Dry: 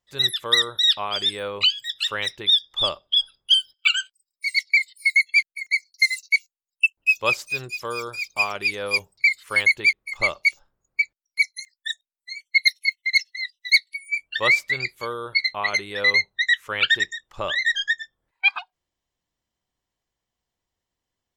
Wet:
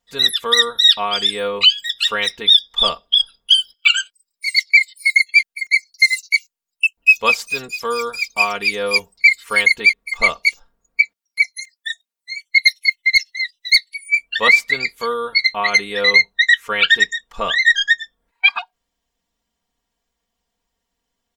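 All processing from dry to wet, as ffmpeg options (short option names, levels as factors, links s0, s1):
-filter_complex "[0:a]asettb=1/sr,asplit=3[s0][s1][s2];[s0]atrim=end=11.014[s3];[s1]atrim=start=11.01:end=12.49,asetpts=PTS-STARTPTS,afade=t=in:d=0.004:c=qsin,afade=t=out:st=1.476:d=0.004:c=qsin,acrossover=split=2900[s4][s5];[s5]acompressor=threshold=0.02:ratio=4:attack=1:release=60[s6];[s4][s6]amix=inputs=2:normalize=0,highpass=120[s7];[s2]atrim=start=12.486[s8];[s3][s7]acrossfade=d=0.004:c1=hsin:c2=qsin[s9];[s9][s8]acrossfade=d=0.004:c1=qsin:c2=hsin,aecho=1:1:4.3:0.85,alimiter=level_in=1.88:limit=0.891:release=50:level=0:latency=1,volume=0.891"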